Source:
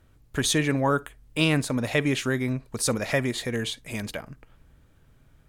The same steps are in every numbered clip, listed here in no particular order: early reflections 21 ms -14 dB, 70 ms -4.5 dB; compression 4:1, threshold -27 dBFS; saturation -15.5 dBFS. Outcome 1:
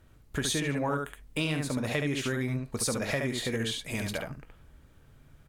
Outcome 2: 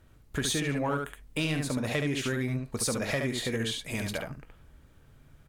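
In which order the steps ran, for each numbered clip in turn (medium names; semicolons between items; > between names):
early reflections > compression > saturation; saturation > early reflections > compression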